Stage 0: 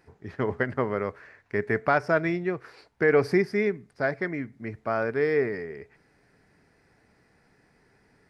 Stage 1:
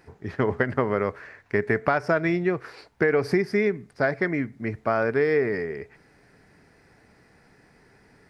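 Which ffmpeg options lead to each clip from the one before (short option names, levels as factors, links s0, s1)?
-af "acompressor=threshold=0.0631:ratio=6,volume=2"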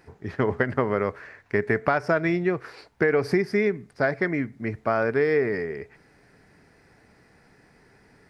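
-af anull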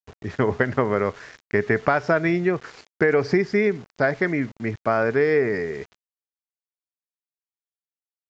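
-af "aeval=exprs='val(0)*gte(abs(val(0)),0.00668)':c=same,aresample=16000,aresample=44100,volume=1.33"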